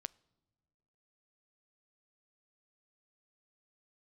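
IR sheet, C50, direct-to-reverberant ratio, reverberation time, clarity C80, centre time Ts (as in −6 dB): 25.5 dB, 20.5 dB, non-exponential decay, 28.5 dB, 1 ms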